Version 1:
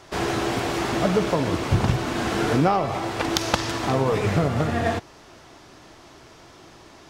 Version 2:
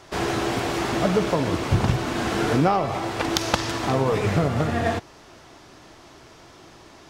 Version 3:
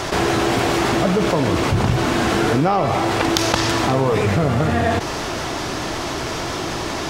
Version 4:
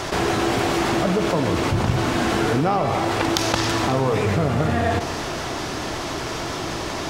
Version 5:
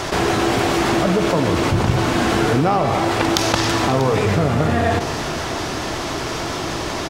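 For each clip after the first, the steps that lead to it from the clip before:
nothing audible
fast leveller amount 70%
echo with dull and thin repeats by turns 0.137 s, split 1300 Hz, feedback 61%, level -11 dB; gain -3 dB
echo 0.641 s -16 dB; gain +3 dB

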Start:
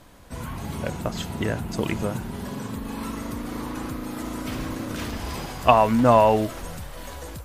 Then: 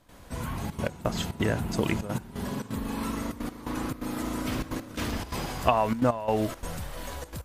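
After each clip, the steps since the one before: compressor 6:1, threshold -19 dBFS, peak gain reduction 9 dB; step gate ".xxxxxxx.x..xxx" 172 bpm -12 dB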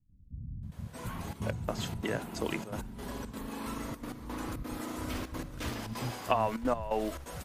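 bands offset in time lows, highs 0.63 s, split 190 Hz; gain -5 dB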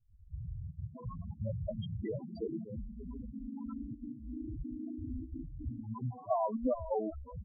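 loudest bins only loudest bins 4; gain +1 dB

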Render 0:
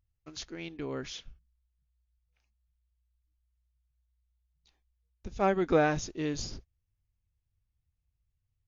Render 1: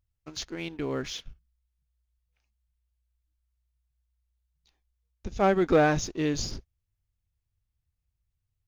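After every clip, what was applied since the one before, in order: sample leveller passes 1; gain +1.5 dB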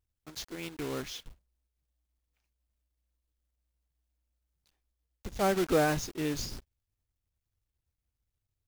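block floating point 3-bit; gain -5 dB

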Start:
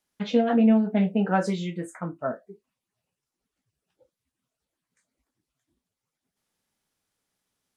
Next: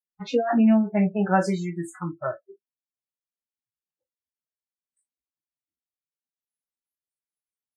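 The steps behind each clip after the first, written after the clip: spectral noise reduction 30 dB; notch 3300 Hz, Q 5.3; gain +3 dB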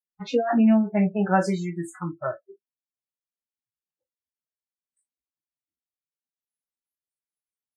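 nothing audible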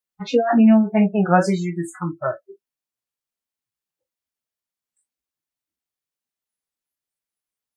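record warp 33 1/3 rpm, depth 100 cents; gain +5 dB

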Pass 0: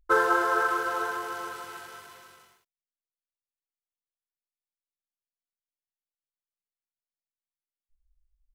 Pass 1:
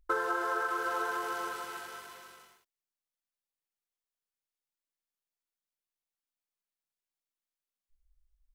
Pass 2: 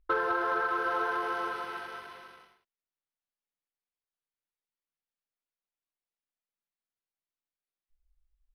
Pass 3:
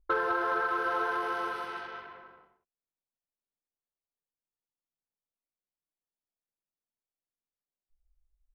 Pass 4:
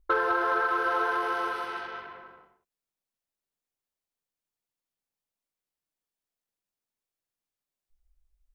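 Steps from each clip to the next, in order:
bell 110 Hz -11 dB 0.54 oct; compressor 5:1, threshold -29 dBFS, peak gain reduction 10.5 dB
sample leveller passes 1; running mean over 6 samples
low-pass opened by the level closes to 790 Hz, open at -32 dBFS
dynamic EQ 150 Hz, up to -7 dB, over -56 dBFS, Q 1.2; gain +3.5 dB

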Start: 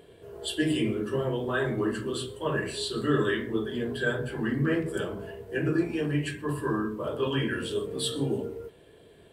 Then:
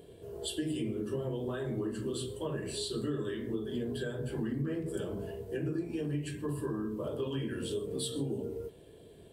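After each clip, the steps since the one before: compressor, threshold -32 dBFS, peak gain reduction 12 dB; bell 1600 Hz -10.5 dB 2.1 oct; gain +2 dB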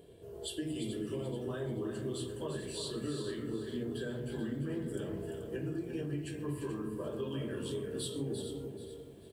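on a send: echo 0.345 s -8 dB; on the sum: lo-fi delay 0.433 s, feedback 35%, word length 10-bit, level -10.5 dB; gain -3.5 dB

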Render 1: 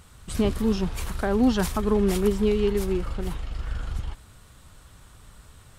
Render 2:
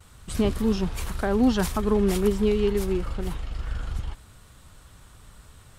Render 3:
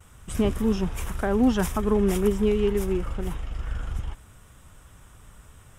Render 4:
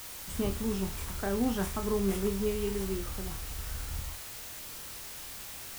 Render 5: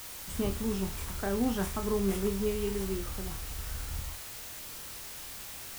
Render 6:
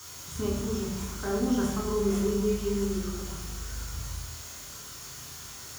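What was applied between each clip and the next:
gate with hold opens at -43 dBFS
bell 4300 Hz -14.5 dB 0.3 oct
added noise white -36 dBFS; on a send: flutter echo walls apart 4.4 m, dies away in 0.22 s; on the sum: gain -8.5 dB
nothing audible
reverb RT60 1.1 s, pre-delay 3 ms, DRR -2 dB; gain -5 dB

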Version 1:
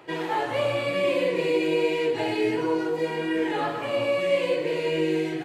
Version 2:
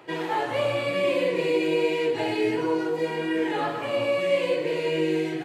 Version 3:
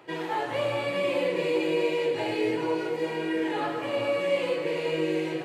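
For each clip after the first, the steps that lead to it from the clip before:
HPF 61 Hz
thinning echo 0.416 s, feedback 64%, high-pass 190 Hz, level -10 dB; gain -3 dB

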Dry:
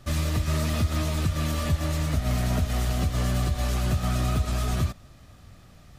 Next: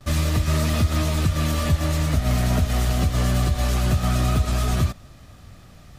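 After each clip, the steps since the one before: gate with hold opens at -45 dBFS; gain +4.5 dB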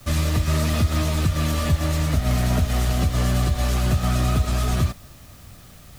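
added noise white -52 dBFS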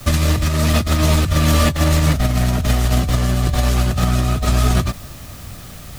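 negative-ratio compressor -22 dBFS, ratio -0.5; ending taper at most 410 dB/s; gain +7.5 dB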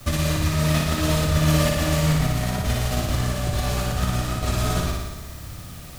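flutter echo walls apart 10 m, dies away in 1.2 s; gain -7 dB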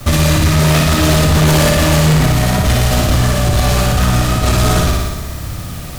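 sine folder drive 9 dB, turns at -7 dBFS; mismatched tape noise reduction decoder only

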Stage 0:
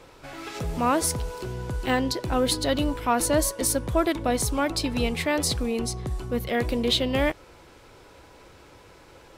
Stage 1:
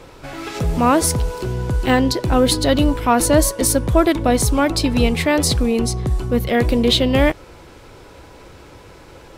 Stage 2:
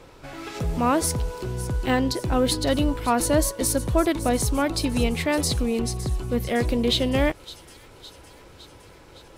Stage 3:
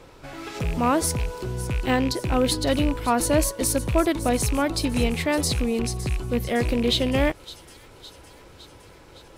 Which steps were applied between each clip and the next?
low shelf 380 Hz +4.5 dB; gain +6.5 dB
thin delay 0.561 s, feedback 64%, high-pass 4200 Hz, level -13 dB; gain -6.5 dB
rattling part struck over -23 dBFS, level -23 dBFS

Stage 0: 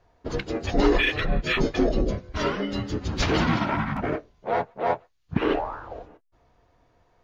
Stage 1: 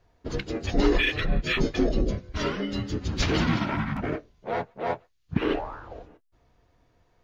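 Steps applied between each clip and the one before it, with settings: bell 830 Hz -5.5 dB 1.9 oct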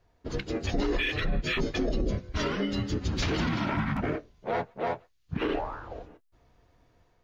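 AGC gain up to 4 dB; limiter -16.5 dBFS, peak gain reduction 11 dB; gain -3 dB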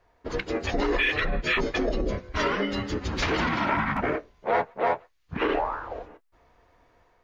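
graphic EQ 125/500/1000/2000 Hz -5/+4/+7/+6 dB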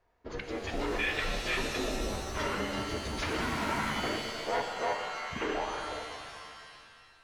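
shimmer reverb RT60 2 s, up +7 st, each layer -2 dB, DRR 5 dB; gain -8.5 dB

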